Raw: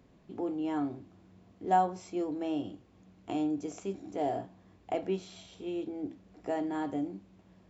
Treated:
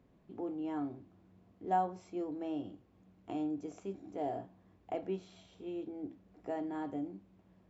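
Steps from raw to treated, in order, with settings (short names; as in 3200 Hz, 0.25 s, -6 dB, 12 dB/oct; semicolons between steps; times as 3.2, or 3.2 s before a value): high shelf 3100 Hz -8.5 dB; gain -5 dB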